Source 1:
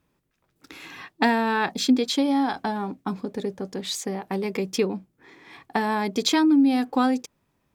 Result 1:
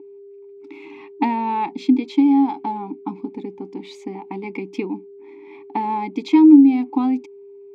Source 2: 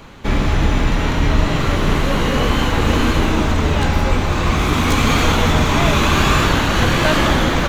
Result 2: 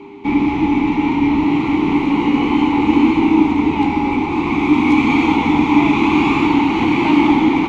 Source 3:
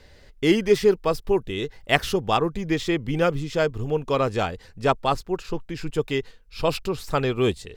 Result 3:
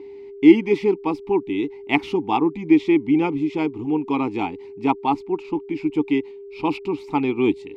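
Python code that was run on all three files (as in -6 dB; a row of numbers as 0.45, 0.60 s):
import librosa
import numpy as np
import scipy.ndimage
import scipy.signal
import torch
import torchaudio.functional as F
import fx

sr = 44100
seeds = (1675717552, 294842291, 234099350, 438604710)

y = x + 10.0 ** (-35.0 / 20.0) * np.sin(2.0 * np.pi * 400.0 * np.arange(len(x)) / sr)
y = fx.vowel_filter(y, sr, vowel='u')
y = librosa.util.normalize(y) * 10.0 ** (-1.5 / 20.0)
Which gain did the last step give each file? +11.5, +13.5, +15.0 dB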